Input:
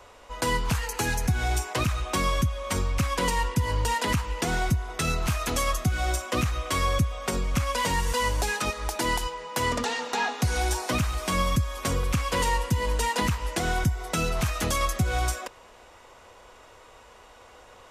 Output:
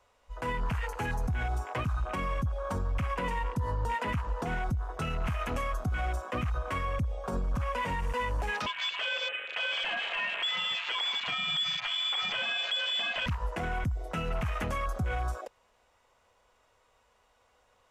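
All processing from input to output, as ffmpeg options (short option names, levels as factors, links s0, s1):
-filter_complex "[0:a]asettb=1/sr,asplit=3[s0][s1][s2];[s0]atrim=end=8.664[s3];[s1]atrim=start=8.66:end=13.26,asetpts=PTS-STARTPTS,afade=t=in:d=0.004:c=qsin,afade=t=out:st=4.596:d=0.004:c=qsin,highshelf=f=2100:g=11,lowpass=f=3000:t=q:w=0.5098,lowpass=f=3000:t=q:w=0.6013,lowpass=f=3000:t=q:w=0.9,lowpass=f=3000:t=q:w=2.563,afreqshift=-3500,aecho=1:1:165|330|495|660|825:0.2|0.102|0.0519|0.0265|0.0135,atrim=end_sample=202860[s4];[s2]atrim=start=13.256[s5];[s3][s4]acrossfade=d=0.004:c1=hsin:c2=qsin[s6];[s6][s5]acrossfade=d=0.004:c1=qsin:c2=hsin,afwtdn=0.0251,equalizer=f=340:w=2.8:g=-6,alimiter=limit=0.0668:level=0:latency=1:release=83"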